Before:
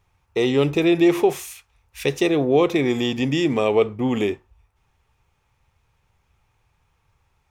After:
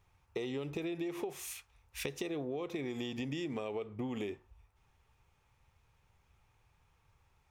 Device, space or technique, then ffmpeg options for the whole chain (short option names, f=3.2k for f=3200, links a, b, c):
serial compression, peaks first: -af "acompressor=threshold=-25dB:ratio=6,acompressor=threshold=-33dB:ratio=2.5,volume=-4.5dB"